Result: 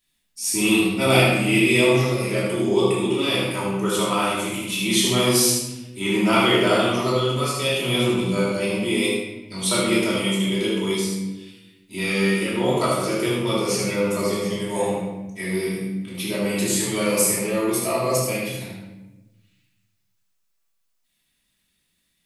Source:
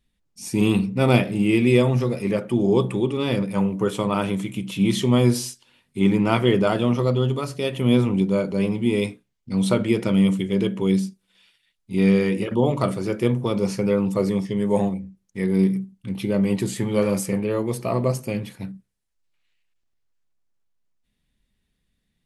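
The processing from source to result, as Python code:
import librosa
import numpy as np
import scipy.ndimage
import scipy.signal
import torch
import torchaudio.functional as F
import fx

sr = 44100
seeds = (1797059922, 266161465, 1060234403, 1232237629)

y = fx.tilt_eq(x, sr, slope=3.5)
y = y + 10.0 ** (-5.5 / 20.0) * np.pad(y, (int(76 * sr / 1000.0), 0))[:len(y)]
y = fx.room_shoebox(y, sr, seeds[0], volume_m3=510.0, walls='mixed', distance_m=2.9)
y = F.gain(torch.from_numpy(y), -4.5).numpy()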